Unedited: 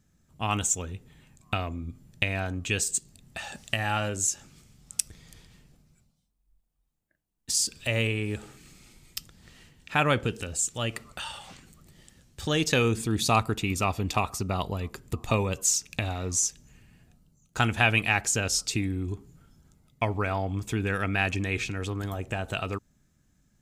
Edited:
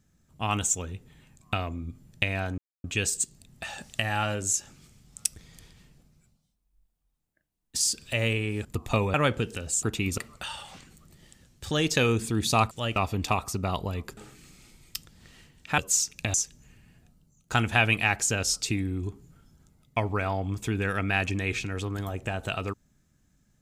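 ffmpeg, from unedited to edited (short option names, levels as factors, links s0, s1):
-filter_complex "[0:a]asplit=11[s0][s1][s2][s3][s4][s5][s6][s7][s8][s9][s10];[s0]atrim=end=2.58,asetpts=PTS-STARTPTS,afade=t=out:st=2.576:d=0.004:c=hsin,apad=pad_dur=0.26[s11];[s1]atrim=start=2.58:end=8.392,asetpts=PTS-STARTPTS,afade=t=in:d=0.004:c=hsin[s12];[s2]atrim=start=15.028:end=15.522[s13];[s3]atrim=start=9.998:end=10.692[s14];[s4]atrim=start=13.468:end=13.822[s15];[s5]atrim=start=10.938:end=13.472[s16];[s6]atrim=start=10.688:end=10.942[s17];[s7]atrim=start=13.818:end=15.032[s18];[s8]atrim=start=8.388:end=10.002[s19];[s9]atrim=start=15.518:end=16.082[s20];[s10]atrim=start=16.388[s21];[s11][s12]concat=n=2:v=0:a=1[s22];[s22][s13]acrossfade=d=0.004:c1=hsin:c2=hsin[s23];[s23][s14]acrossfade=d=0.004:c1=hsin:c2=hsin[s24];[s24][s15]acrossfade=d=0.004:c1=hsin:c2=hsin[s25];[s25][s16]acrossfade=d=0.004:c1=hsin:c2=hsin[s26];[s26][s17]acrossfade=d=0.004:c1=hsin:c2=hsin[s27];[s27][s18]acrossfade=d=0.004:c1=hsin:c2=hsin[s28];[s28][s19]acrossfade=d=0.004:c1=hsin:c2=hsin[s29];[s29][s20]acrossfade=d=0.004:c1=hsin:c2=hsin[s30];[s30][s21]acrossfade=d=0.004:c1=hsin:c2=hsin"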